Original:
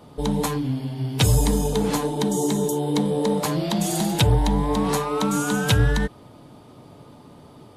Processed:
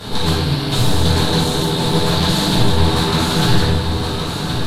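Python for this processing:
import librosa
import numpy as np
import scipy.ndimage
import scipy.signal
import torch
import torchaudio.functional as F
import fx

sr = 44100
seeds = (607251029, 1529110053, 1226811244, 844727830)

p1 = fx.bin_compress(x, sr, power=0.4)
p2 = fx.peak_eq(p1, sr, hz=4200.0, db=12.0, octaves=0.45)
p3 = np.clip(10.0 ** (14.0 / 20.0) * p2, -1.0, 1.0) / 10.0 ** (14.0 / 20.0)
p4 = p2 + (p3 * librosa.db_to_amplitude(-6.0))
p5 = fx.stretch_grains(p4, sr, factor=0.6, grain_ms=24.0)
p6 = p5 + fx.echo_single(p5, sr, ms=1069, db=-7.5, dry=0)
p7 = fx.room_shoebox(p6, sr, seeds[0], volume_m3=370.0, walls='mixed', distance_m=5.1)
p8 = fx.doppler_dist(p7, sr, depth_ms=0.19)
y = p8 * librosa.db_to_amplitude(-15.5)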